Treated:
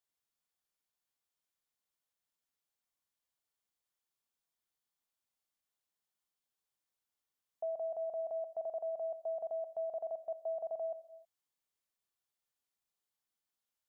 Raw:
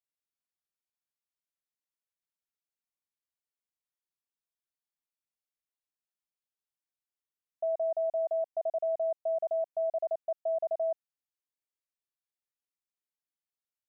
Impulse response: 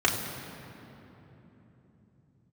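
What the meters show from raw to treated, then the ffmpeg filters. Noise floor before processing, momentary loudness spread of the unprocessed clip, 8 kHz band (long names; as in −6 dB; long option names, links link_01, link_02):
below −85 dBFS, 4 LU, can't be measured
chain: -filter_complex "[0:a]alimiter=level_in=12dB:limit=-24dB:level=0:latency=1:release=37,volume=-12dB,asplit=2[link_01][link_02];[link_02]highpass=470[link_03];[1:a]atrim=start_sample=2205,afade=type=out:start_time=0.37:duration=0.01,atrim=end_sample=16758[link_04];[link_03][link_04]afir=irnorm=-1:irlink=0,volume=-22.5dB[link_05];[link_01][link_05]amix=inputs=2:normalize=0,volume=3dB"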